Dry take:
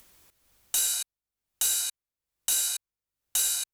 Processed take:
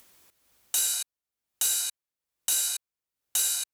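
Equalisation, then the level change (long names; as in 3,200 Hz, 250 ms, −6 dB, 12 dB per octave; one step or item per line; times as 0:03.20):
high-pass filter 53 Hz
parametric band 78 Hz −7 dB 1.8 octaves
0.0 dB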